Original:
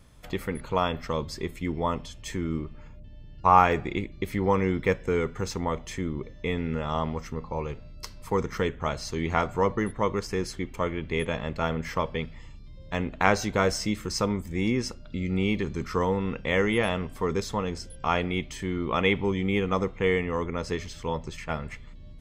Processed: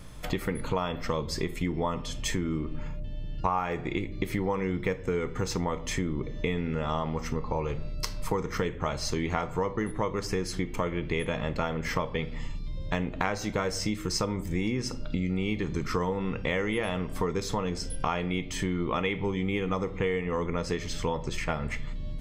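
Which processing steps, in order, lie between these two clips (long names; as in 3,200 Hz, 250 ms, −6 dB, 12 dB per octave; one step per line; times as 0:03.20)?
rectangular room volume 350 cubic metres, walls furnished, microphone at 0.49 metres
downward compressor 6 to 1, threshold −35 dBFS, peak gain reduction 21.5 dB
level +8.5 dB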